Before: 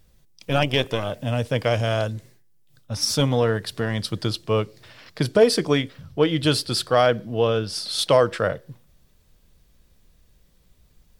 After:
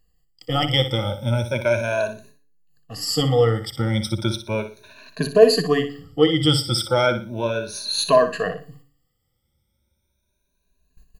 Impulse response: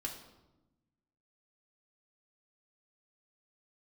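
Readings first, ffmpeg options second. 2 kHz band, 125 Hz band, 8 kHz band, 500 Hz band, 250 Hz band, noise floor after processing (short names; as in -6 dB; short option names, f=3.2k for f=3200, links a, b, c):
+1.0 dB, +1.5 dB, 0.0 dB, +1.5 dB, +1.0 dB, -73 dBFS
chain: -filter_complex "[0:a]afftfilt=real='re*pow(10,24/40*sin(2*PI*(1.5*log(max(b,1)*sr/1024/100)/log(2)-(0.35)*(pts-256)/sr)))':imag='im*pow(10,24/40*sin(2*PI*(1.5*log(max(b,1)*sr/1024/100)/log(2)-(0.35)*(pts-256)/sr)))':win_size=1024:overlap=0.75,agate=range=-11dB:threshold=-43dB:ratio=16:detection=peak,bandreject=f=142.9:t=h:w=4,bandreject=f=285.8:t=h:w=4,bandreject=f=428.7:t=h:w=4,bandreject=f=571.6:t=h:w=4,asplit=2[a][b];[b]aecho=0:1:60|120|180:0.316|0.0885|0.0248[c];[a][c]amix=inputs=2:normalize=0,volume=-5dB"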